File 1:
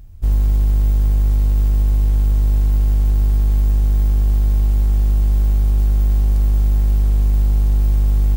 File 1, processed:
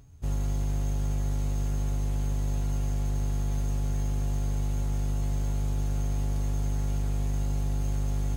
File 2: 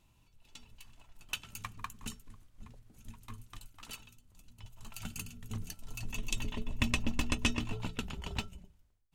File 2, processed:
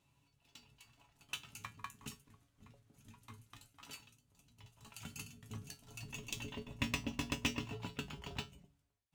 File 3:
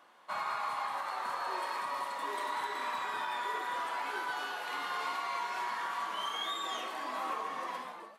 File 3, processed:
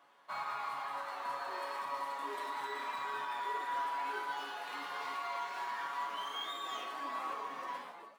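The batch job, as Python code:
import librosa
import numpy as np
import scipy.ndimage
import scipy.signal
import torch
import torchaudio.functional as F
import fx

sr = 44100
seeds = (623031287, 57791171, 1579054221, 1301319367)

y = scipy.signal.sosfilt(scipy.signal.butter(2, 75.0, 'highpass', fs=sr, output='sos'), x)
y = fx.comb_fb(y, sr, f0_hz=140.0, decay_s=0.2, harmonics='all', damping=0.0, mix_pct=80)
y = np.interp(np.arange(len(y)), np.arange(len(y))[::2], y[::2])
y = y * 10.0 ** (3.5 / 20.0)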